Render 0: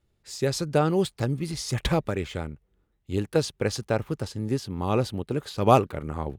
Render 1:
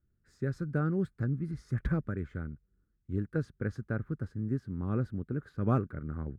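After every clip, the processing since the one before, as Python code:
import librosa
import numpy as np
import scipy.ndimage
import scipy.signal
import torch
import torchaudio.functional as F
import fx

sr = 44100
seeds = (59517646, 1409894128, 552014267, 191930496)

y = fx.curve_eq(x, sr, hz=(240.0, 890.0, 1500.0, 2800.0), db=(0, -19, 0, -26))
y = F.gain(torch.from_numpy(y), -3.5).numpy()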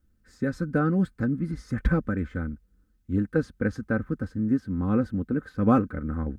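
y = x + 0.65 * np.pad(x, (int(3.9 * sr / 1000.0), 0))[:len(x)]
y = F.gain(torch.from_numpy(y), 7.5).numpy()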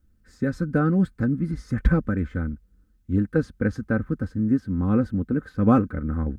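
y = fx.low_shelf(x, sr, hz=210.0, db=4.0)
y = F.gain(torch.from_numpy(y), 1.0).numpy()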